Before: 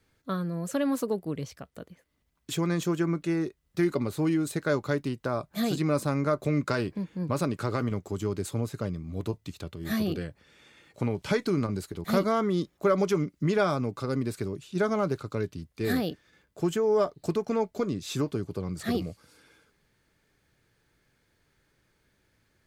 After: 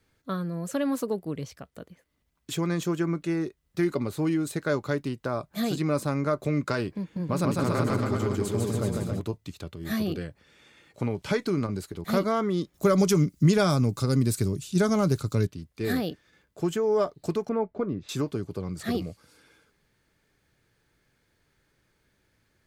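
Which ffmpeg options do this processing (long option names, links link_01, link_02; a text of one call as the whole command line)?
ffmpeg -i in.wav -filter_complex "[0:a]asettb=1/sr,asplit=3[link_01][link_02][link_03];[link_01]atrim=end=7.014[link_04];[link_02]atrim=start=7.01:end=9.2,asetpts=PTS-STARTPTS,afade=type=in:duration=0.004:curve=qsin,afade=type=out:start_time=2.186:duration=0.004:curve=qsin,aecho=1:1:150|277.5|385.9|478|556.3:0.794|0.631|0.501|0.398|0.316,atrim=end_sample=96579[link_05];[link_03]atrim=start=9.196[link_06];[link_04][link_05]acrossfade=duration=0.004:curve1=hsin:curve2=qsin[link_07];[link_07][link_06]acrossfade=duration=0.004:curve1=qsin:curve2=hsin,asettb=1/sr,asplit=3[link_08][link_09][link_10];[link_08]atrim=end=12.744[link_11];[link_09]atrim=start=12.74:end=15.47,asetpts=PTS-STARTPTS,afade=type=in:duration=0.004:curve=qsin,afade=type=out:start_time=2.726:duration=0.004:curve=qsin,bass=frequency=250:gain=10,treble=frequency=4000:gain=14[link_12];[link_10]atrim=start=15.466[link_13];[link_11][link_12]acrossfade=duration=0.004:curve1=hsin:curve2=qsin[link_14];[link_14][link_13]acrossfade=duration=0.004:curve1=qsin:curve2=hsin,asettb=1/sr,asplit=3[link_15][link_16][link_17];[link_15]atrim=end=17.494[link_18];[link_16]atrim=start=17.49:end=18.09,asetpts=PTS-STARTPTS,afade=type=in:duration=0.004:curve=qsin,afade=type=out:start_time=0.596:duration=0.004:curve=qsin,lowpass=1600[link_19];[link_17]atrim=start=18.086[link_20];[link_18][link_19]acrossfade=duration=0.004:curve1=hsin:curve2=qsin[link_21];[link_21][link_20]acrossfade=duration=0.004:curve1=qsin:curve2=hsin" out.wav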